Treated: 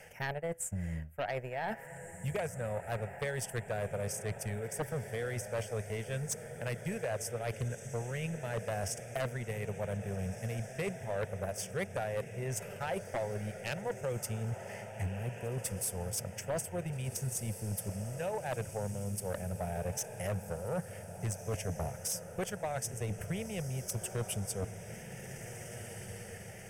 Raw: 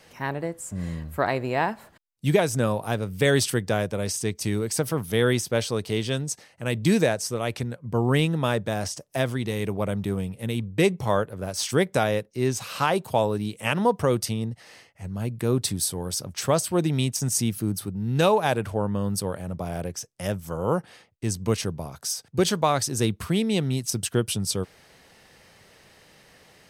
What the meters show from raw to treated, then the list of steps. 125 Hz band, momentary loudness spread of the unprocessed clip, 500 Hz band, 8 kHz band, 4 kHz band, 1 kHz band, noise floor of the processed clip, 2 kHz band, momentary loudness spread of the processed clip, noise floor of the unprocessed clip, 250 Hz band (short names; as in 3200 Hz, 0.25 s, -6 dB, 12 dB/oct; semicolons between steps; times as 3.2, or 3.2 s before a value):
-10.0 dB, 9 LU, -11.5 dB, -9.0 dB, -16.5 dB, -13.0 dB, -48 dBFS, -10.5 dB, 3 LU, -57 dBFS, -16.0 dB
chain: reverse; compressor 20:1, threshold -34 dBFS, peak gain reduction 20.5 dB; reverse; transient shaper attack +9 dB, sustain -9 dB; fixed phaser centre 1100 Hz, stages 6; diffused feedback echo 1.661 s, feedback 53%, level -11 dB; sine folder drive 8 dB, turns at -21 dBFS; gain -8 dB